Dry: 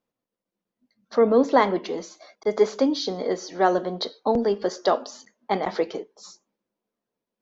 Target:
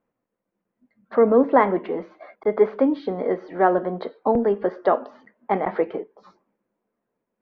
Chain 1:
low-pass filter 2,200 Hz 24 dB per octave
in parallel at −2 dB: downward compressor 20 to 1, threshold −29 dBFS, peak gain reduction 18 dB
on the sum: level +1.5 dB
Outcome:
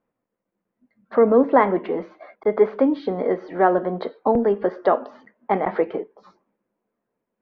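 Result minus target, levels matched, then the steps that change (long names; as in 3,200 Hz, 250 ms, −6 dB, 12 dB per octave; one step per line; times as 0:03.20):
downward compressor: peak gain reduction −10 dB
change: downward compressor 20 to 1, threshold −39.5 dBFS, peak gain reduction 28 dB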